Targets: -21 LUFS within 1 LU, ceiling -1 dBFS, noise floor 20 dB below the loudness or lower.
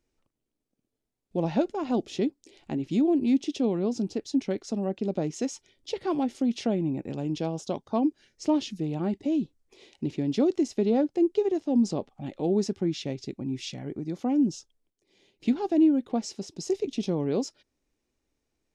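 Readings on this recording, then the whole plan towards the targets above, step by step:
loudness -28.0 LUFS; peak level -12.5 dBFS; loudness target -21.0 LUFS
-> trim +7 dB

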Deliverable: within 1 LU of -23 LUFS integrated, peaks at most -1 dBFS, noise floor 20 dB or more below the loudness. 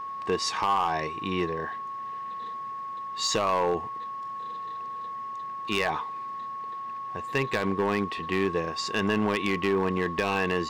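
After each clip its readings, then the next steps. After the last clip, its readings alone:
clipped samples 0.8%; clipping level -18.5 dBFS; steady tone 1.1 kHz; tone level -33 dBFS; loudness -29.0 LUFS; peak level -18.5 dBFS; loudness target -23.0 LUFS
-> clip repair -18.5 dBFS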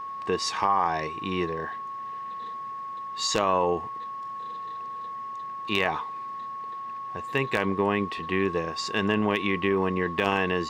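clipped samples 0.0%; steady tone 1.1 kHz; tone level -33 dBFS
-> band-stop 1.1 kHz, Q 30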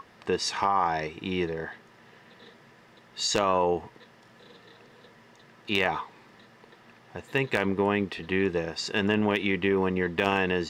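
steady tone not found; loudness -27.0 LUFS; peak level -9.0 dBFS; loudness target -23.0 LUFS
-> trim +4 dB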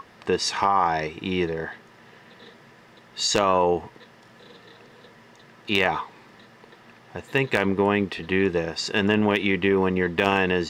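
loudness -23.0 LUFS; peak level -5.0 dBFS; noise floor -52 dBFS

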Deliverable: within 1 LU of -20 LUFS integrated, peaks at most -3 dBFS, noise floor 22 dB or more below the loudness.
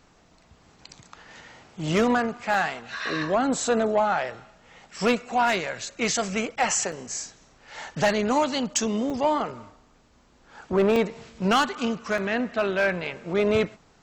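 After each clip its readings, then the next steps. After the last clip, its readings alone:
clipped samples 0.3%; clipping level -14.0 dBFS; dropouts 5; longest dropout 1.7 ms; loudness -25.0 LUFS; peak level -14.0 dBFS; loudness target -20.0 LUFS
-> clip repair -14 dBFS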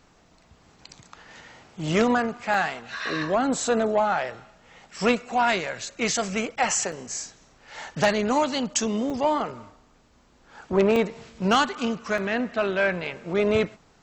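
clipped samples 0.0%; dropouts 5; longest dropout 1.7 ms
-> interpolate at 2.54/6.92/9.10/10.96/12.18 s, 1.7 ms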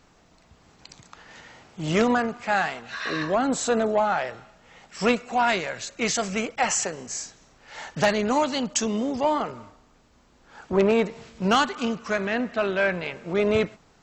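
dropouts 0; loudness -25.0 LUFS; peak level -5.5 dBFS; loudness target -20.0 LUFS
-> trim +5 dB; peak limiter -3 dBFS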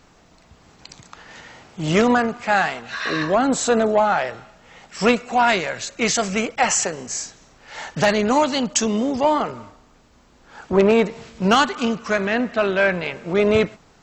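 loudness -20.0 LUFS; peak level -3.0 dBFS; noise floor -53 dBFS

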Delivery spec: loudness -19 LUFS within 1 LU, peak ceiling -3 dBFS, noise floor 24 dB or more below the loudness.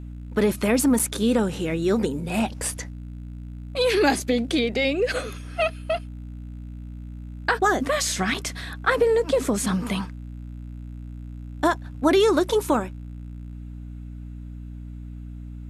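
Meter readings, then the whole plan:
dropouts 2; longest dropout 4.8 ms; hum 60 Hz; highest harmonic 300 Hz; hum level -34 dBFS; loudness -23.0 LUFS; peak level -7.5 dBFS; loudness target -19.0 LUFS
-> interpolate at 0.99/8.34 s, 4.8 ms; de-hum 60 Hz, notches 5; trim +4 dB

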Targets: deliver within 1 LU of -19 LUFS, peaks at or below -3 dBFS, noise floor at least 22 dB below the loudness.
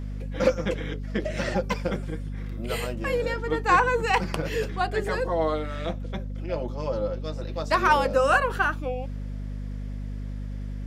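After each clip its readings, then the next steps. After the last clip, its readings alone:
hum 50 Hz; highest harmonic 250 Hz; hum level -30 dBFS; loudness -27.0 LUFS; peak level -8.0 dBFS; loudness target -19.0 LUFS
-> hum notches 50/100/150/200/250 Hz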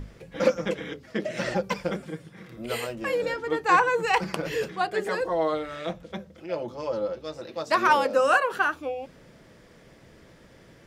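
hum not found; loudness -26.5 LUFS; peak level -7.0 dBFS; loudness target -19.0 LUFS
-> trim +7.5 dB; peak limiter -3 dBFS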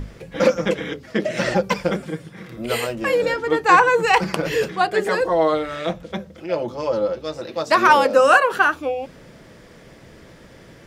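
loudness -19.5 LUFS; peak level -3.0 dBFS; noise floor -46 dBFS

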